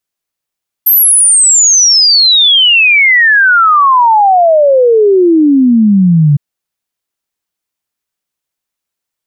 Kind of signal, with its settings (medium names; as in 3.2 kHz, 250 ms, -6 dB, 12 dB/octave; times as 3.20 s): log sweep 13 kHz -> 140 Hz 5.51 s -3.5 dBFS